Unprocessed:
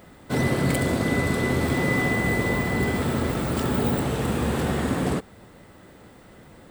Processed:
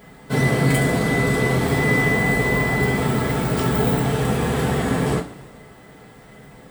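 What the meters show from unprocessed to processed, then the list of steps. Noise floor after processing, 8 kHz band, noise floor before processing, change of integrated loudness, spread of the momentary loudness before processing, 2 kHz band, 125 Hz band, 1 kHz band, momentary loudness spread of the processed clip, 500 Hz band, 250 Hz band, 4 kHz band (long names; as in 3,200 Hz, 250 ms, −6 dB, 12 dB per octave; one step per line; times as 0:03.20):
−45 dBFS, +4.0 dB, −50 dBFS, +4.5 dB, 3 LU, +5.5 dB, +5.0 dB, +4.5 dB, 4 LU, +4.5 dB, +3.0 dB, +3.5 dB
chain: coupled-rooms reverb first 0.22 s, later 1.6 s, from −20 dB, DRR −2.5 dB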